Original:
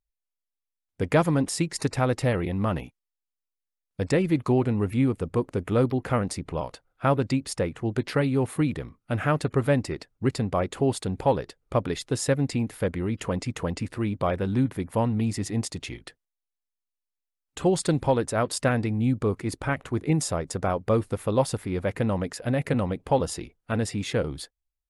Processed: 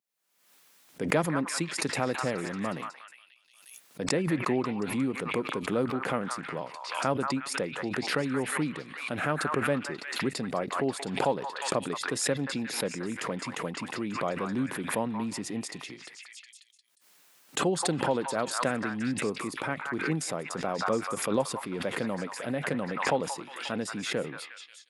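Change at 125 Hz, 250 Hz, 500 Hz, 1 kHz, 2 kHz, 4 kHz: -11.0 dB, -5.0 dB, -5.0 dB, -1.5 dB, +2.0 dB, +1.5 dB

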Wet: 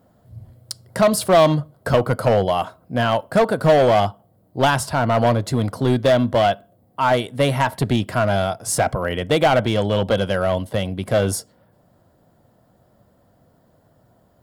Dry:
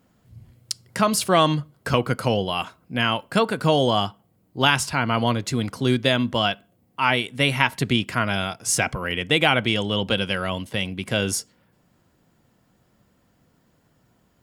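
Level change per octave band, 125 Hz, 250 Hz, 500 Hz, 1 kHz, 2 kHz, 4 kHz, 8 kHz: +4.5 dB, +2.0 dB, +7.5 dB, +4.0 dB, -2.0 dB, -4.5 dB, -1.0 dB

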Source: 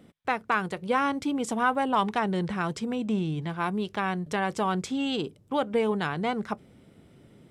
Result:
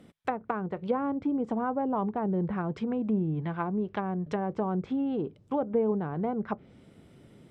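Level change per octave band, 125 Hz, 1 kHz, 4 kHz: 0.0 dB, -6.0 dB, under -15 dB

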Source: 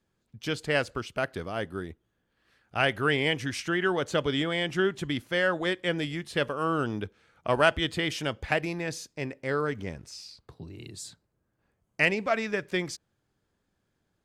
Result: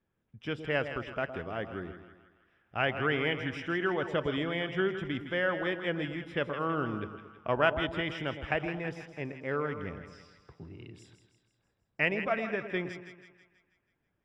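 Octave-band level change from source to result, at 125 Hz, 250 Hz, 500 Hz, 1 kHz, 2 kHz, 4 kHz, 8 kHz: -3.5 dB, -3.5 dB, -3.5 dB, -3.5 dB, -3.5 dB, -7.5 dB, under -20 dB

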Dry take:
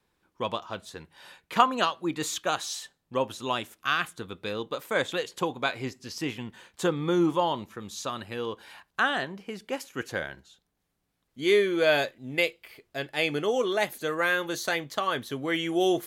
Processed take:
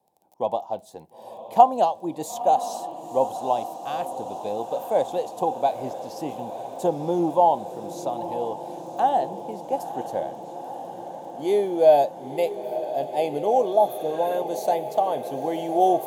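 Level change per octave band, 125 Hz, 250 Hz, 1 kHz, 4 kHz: -2.0 dB, 0.0 dB, +8.5 dB, -10.5 dB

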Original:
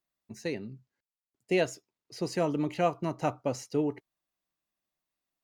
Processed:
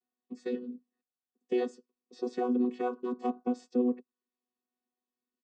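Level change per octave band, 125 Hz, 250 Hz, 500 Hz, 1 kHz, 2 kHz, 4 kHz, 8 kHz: under -20 dB, +2.0 dB, -2.5 dB, -3.0 dB, -10.5 dB, -11.5 dB, under -15 dB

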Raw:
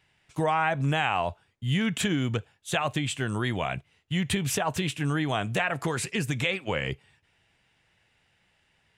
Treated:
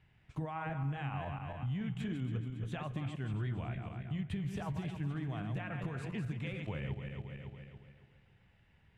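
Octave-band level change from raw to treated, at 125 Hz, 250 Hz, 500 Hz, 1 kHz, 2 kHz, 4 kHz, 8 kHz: -6.0 dB, -9.5 dB, -15.0 dB, -15.5 dB, -17.0 dB, -20.5 dB, under -25 dB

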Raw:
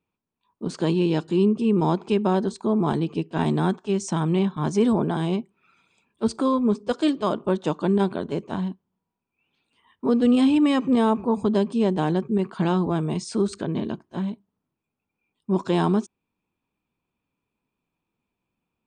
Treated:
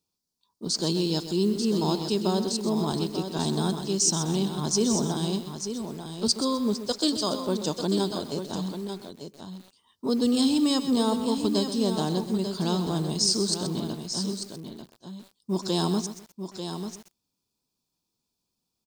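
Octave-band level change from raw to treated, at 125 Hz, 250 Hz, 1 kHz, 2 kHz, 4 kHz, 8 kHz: -4.0 dB, -4.0 dB, -5.5 dB, -8.0 dB, +8.5 dB, no reading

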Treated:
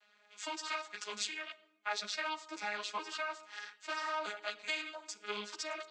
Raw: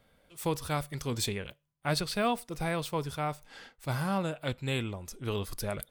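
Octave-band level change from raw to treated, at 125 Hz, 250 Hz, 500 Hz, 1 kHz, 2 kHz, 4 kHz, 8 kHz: under -35 dB, -17.5 dB, -10.5 dB, -4.5 dB, +0.5 dB, -2.0 dB, -4.0 dB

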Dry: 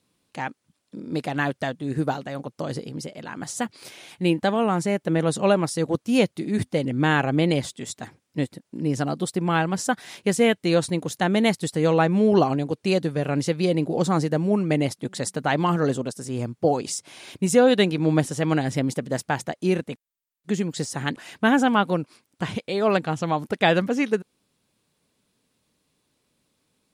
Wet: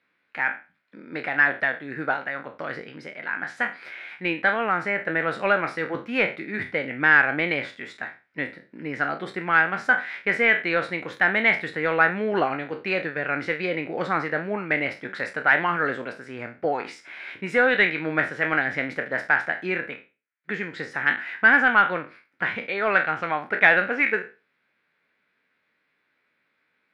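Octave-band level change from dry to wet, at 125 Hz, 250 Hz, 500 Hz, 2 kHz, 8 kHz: -13.0 dB, -9.5 dB, -4.5 dB, +10.5 dB, under -20 dB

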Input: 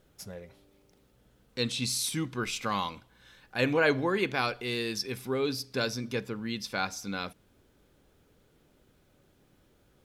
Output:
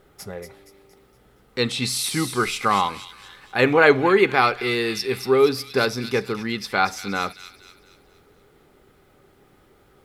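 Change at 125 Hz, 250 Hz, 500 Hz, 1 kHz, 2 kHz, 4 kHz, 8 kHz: +6.0 dB, +8.0 dB, +11.5 dB, +12.5 dB, +10.0 dB, +6.5 dB, +5.5 dB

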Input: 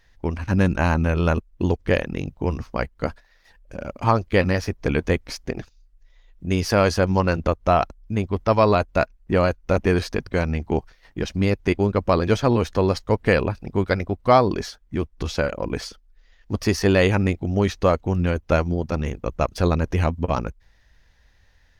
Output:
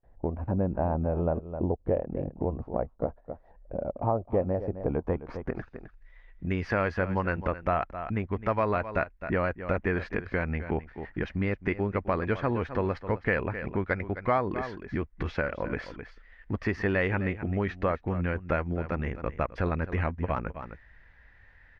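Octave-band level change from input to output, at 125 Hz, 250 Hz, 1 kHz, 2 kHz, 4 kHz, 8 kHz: -8.5 dB, -8.0 dB, -8.0 dB, -5.5 dB, -18.0 dB, under -25 dB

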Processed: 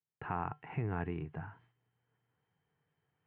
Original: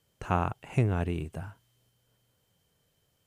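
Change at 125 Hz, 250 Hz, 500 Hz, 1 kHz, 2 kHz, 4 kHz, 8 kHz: -10.0 dB, -8.0 dB, -9.0 dB, -6.5 dB, -5.5 dB, under -10 dB, no reading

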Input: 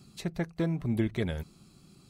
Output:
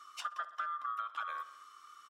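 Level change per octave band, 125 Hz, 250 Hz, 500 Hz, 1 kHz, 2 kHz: under -40 dB, under -40 dB, -24.0 dB, +12.5 dB, -1.0 dB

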